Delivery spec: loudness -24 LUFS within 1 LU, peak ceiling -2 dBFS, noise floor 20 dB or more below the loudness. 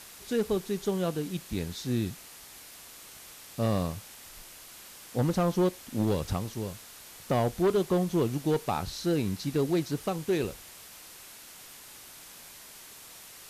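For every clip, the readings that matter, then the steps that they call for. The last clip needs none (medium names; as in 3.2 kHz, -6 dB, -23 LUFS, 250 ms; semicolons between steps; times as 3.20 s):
clipped samples 1.0%; clipping level -20.0 dBFS; noise floor -49 dBFS; noise floor target -50 dBFS; loudness -30.0 LUFS; peak level -20.0 dBFS; loudness target -24.0 LUFS
-> clip repair -20 dBFS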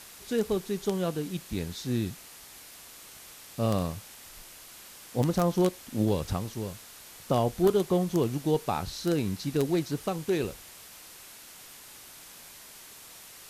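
clipped samples 0.0%; noise floor -49 dBFS; noise floor target -50 dBFS
-> noise reduction 6 dB, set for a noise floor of -49 dBFS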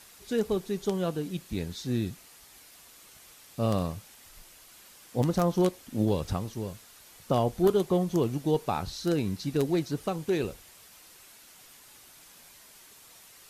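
noise floor -54 dBFS; loudness -29.5 LUFS; peak level -11.5 dBFS; loudness target -24.0 LUFS
-> trim +5.5 dB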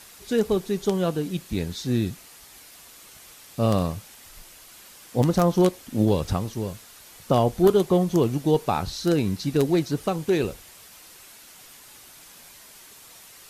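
loudness -24.0 LUFS; peak level -6.0 dBFS; noise floor -48 dBFS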